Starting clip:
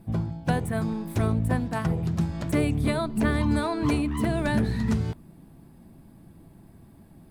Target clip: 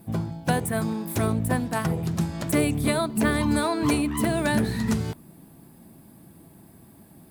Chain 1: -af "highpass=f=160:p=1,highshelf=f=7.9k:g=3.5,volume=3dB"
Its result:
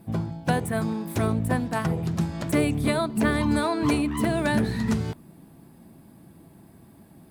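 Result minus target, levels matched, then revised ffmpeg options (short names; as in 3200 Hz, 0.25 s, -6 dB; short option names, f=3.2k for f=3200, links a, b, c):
8000 Hz band -5.0 dB
-af "highpass=f=160:p=1,highshelf=f=7.9k:g=12.5,volume=3dB"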